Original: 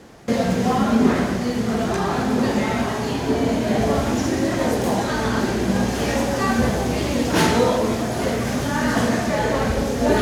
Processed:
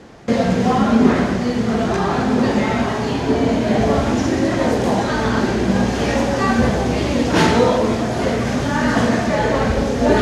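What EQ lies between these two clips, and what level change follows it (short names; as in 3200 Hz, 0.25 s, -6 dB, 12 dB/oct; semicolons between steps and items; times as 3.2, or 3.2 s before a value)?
air absorption 59 m; +3.5 dB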